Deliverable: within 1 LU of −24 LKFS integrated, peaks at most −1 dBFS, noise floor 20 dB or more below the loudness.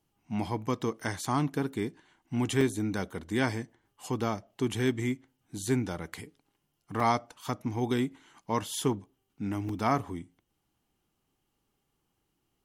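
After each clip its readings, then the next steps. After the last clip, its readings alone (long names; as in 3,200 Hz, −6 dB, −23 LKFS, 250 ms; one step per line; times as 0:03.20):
number of dropouts 4; longest dropout 3.2 ms; integrated loudness −32.0 LKFS; sample peak −12.0 dBFS; target loudness −24.0 LKFS
→ repair the gap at 0:01.25/0:02.61/0:07.00/0:09.69, 3.2 ms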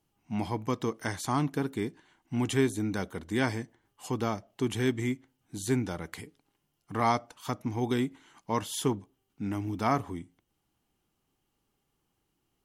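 number of dropouts 0; integrated loudness −32.0 LKFS; sample peak −12.0 dBFS; target loudness −24.0 LKFS
→ level +8 dB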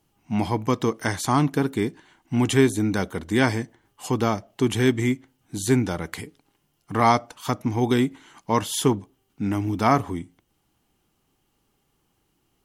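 integrated loudness −24.0 LKFS; sample peak −4.0 dBFS; background noise floor −71 dBFS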